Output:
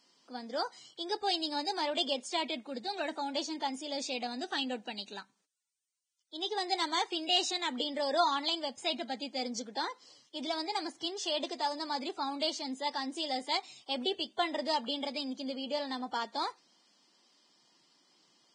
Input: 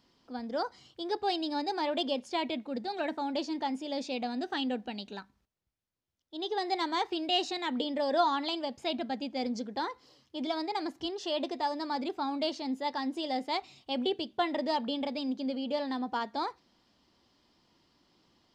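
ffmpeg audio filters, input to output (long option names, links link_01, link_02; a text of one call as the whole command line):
ffmpeg -i in.wav -af "aemphasis=mode=production:type=bsi,volume=-1.5dB" -ar 22050 -c:a libvorbis -b:a 16k out.ogg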